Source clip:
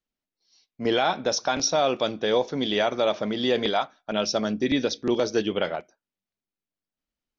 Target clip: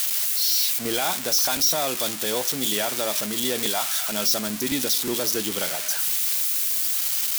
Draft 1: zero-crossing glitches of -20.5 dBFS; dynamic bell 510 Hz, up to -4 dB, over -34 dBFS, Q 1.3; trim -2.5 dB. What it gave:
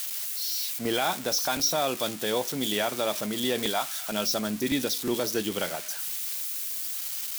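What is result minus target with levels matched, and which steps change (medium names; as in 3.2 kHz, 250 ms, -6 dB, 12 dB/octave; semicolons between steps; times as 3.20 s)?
zero-crossing glitches: distortion -9 dB
change: zero-crossing glitches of -11.5 dBFS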